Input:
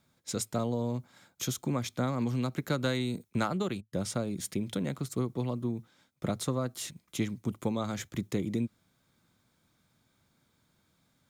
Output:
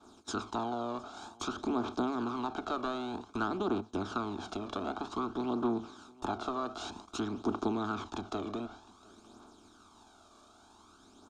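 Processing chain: spectral levelling over time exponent 0.4; expander -32 dBFS; low-pass that closes with the level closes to 2.6 kHz, closed at -24 dBFS; peaking EQ 150 Hz -12 dB 1.5 oct; phaser 0.53 Hz, delay 1.8 ms, feedback 49%; distance through air 100 m; static phaser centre 530 Hz, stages 6; delay 709 ms -23.5 dB

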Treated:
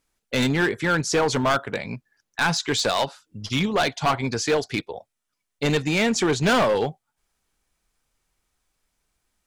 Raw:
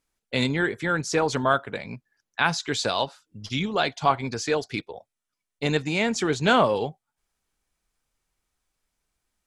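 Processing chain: hard clipper -20.5 dBFS, distortion -9 dB; trim +4.5 dB

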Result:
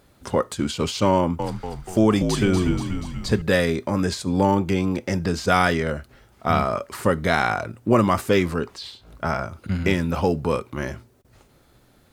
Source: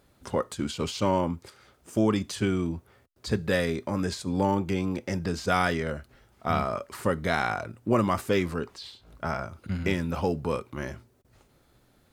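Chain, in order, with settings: 1.15–3.42 s: frequency-shifting echo 240 ms, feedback 59%, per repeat -58 Hz, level -6.5 dB; trim +6 dB

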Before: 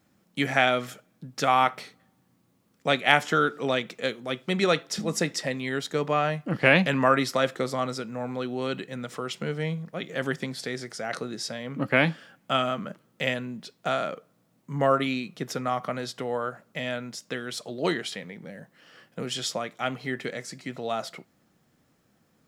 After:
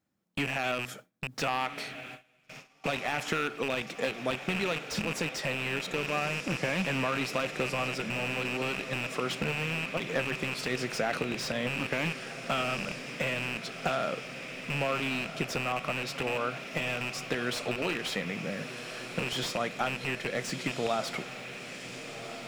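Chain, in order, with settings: rattle on loud lows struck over -37 dBFS, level -12 dBFS; in parallel at -2.5 dB: gain riding within 5 dB 2 s; on the sum: peak limiter -9 dBFS, peak gain reduction 10 dB; compression 16:1, threshold -25 dBFS, peak gain reduction 11.5 dB; echo that smears into a reverb 1430 ms, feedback 68%, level -12 dB; gate with hold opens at -32 dBFS; slew-rate limiter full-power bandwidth 100 Hz

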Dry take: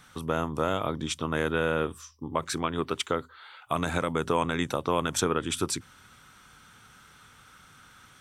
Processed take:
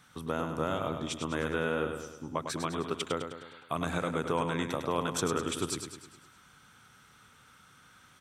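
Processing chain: high-pass 110 Hz 6 dB/octave; bass shelf 250 Hz +4 dB; feedback delay 103 ms, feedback 52%, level -7 dB; trim -5.5 dB

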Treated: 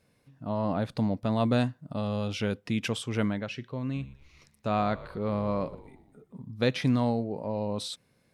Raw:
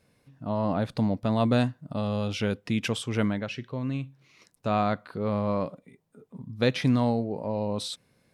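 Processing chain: 3.84–6.52 s: frequency-shifting echo 119 ms, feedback 54%, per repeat -70 Hz, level -17.5 dB; trim -2 dB

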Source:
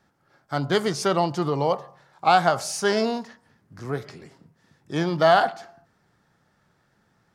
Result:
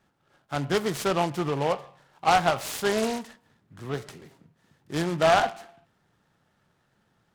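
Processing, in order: 3.02–5.02 s: dynamic bell 5.5 kHz, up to +7 dB, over -51 dBFS, Q 0.87; delay time shaken by noise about 1.6 kHz, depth 0.052 ms; trim -3 dB

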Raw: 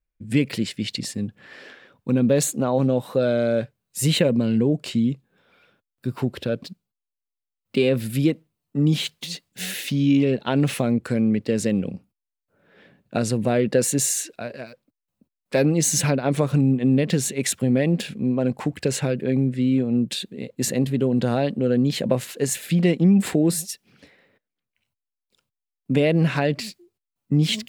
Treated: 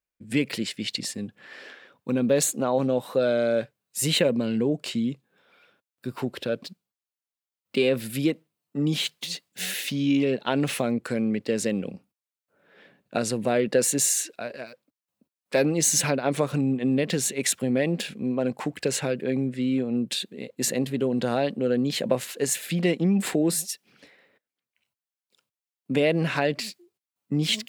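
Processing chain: high-pass 350 Hz 6 dB/octave

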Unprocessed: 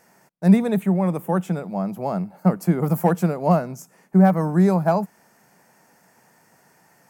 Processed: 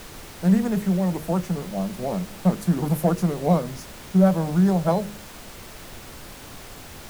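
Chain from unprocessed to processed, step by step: de-hum 51.73 Hz, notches 12; formant shift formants -3 st; added noise pink -39 dBFS; trim -1.5 dB

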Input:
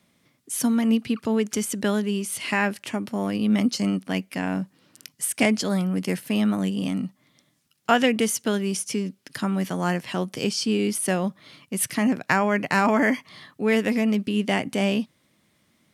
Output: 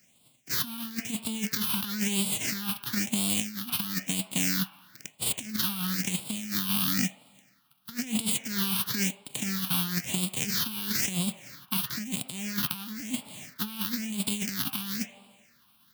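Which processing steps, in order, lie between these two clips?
formants flattened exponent 0.1; on a send at -22 dB: high-order bell 1.1 kHz +13 dB 2.9 oct + reverberation, pre-delay 3 ms; on the sum: dynamic bell 750 Hz, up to -6 dB, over -38 dBFS, Q 0.88; compressor with a negative ratio -27 dBFS, ratio -0.5; phase shifter stages 6, 1 Hz, lowest notch 510–1700 Hz

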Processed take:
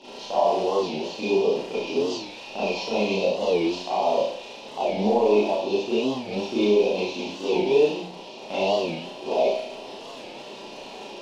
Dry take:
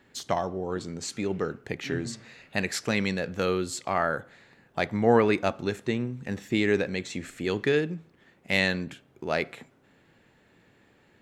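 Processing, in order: one-bit delta coder 32 kbps, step -34 dBFS; elliptic band-stop 970–2600 Hz; gate -36 dBFS, range -9 dB; high-pass 410 Hz 12 dB/octave; treble shelf 3.6 kHz -7.5 dB; in parallel at -0.5 dB: compression, threshold -41 dBFS, peak gain reduction 19 dB; on the sum: peak limiter -21.5 dBFS, peak gain reduction 8.5 dB; crackle 85 per s -36 dBFS; distance through air 82 m; on a send: flutter echo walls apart 5.7 m, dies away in 0.42 s; on the sum: Schroeder reverb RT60 0.49 s, combs from 28 ms, DRR -9.5 dB; warped record 45 rpm, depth 160 cents

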